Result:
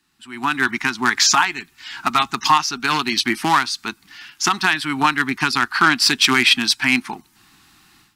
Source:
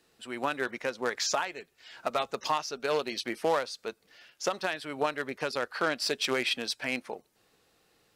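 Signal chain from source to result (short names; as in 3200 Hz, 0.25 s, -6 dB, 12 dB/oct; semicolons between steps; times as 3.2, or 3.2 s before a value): Chebyshev band-stop 290–950 Hz, order 2; AGC gain up to 16 dB; gain +1.5 dB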